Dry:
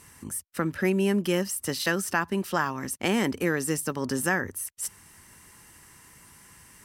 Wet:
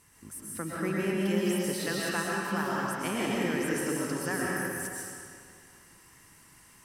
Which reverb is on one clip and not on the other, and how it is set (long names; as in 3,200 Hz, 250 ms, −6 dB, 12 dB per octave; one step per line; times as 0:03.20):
comb and all-pass reverb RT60 2.3 s, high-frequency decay 0.9×, pre-delay 85 ms, DRR −5.5 dB
level −9.5 dB